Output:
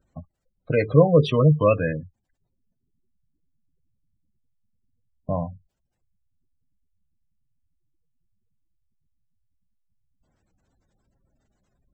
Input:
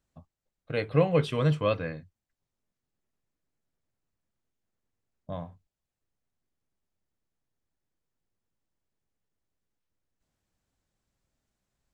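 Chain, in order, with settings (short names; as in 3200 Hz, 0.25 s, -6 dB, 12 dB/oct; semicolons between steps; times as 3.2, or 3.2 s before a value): spectral gate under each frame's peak -20 dB strong; in parallel at +0.5 dB: compressor, threshold -36 dBFS, peak gain reduction 18 dB; on the sum: gain +6.5 dB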